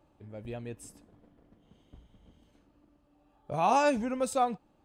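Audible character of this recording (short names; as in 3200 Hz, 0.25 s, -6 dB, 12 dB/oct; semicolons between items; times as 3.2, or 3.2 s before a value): noise floor -68 dBFS; spectral tilt -5.0 dB/oct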